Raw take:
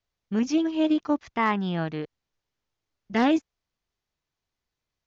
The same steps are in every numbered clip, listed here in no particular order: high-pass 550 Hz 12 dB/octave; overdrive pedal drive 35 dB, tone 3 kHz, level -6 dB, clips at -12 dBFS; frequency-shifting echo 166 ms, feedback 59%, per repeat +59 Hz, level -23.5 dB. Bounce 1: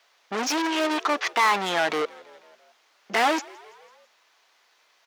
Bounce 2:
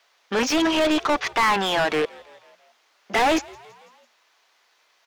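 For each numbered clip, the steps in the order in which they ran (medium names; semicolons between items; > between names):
overdrive pedal > frequency-shifting echo > high-pass; high-pass > overdrive pedal > frequency-shifting echo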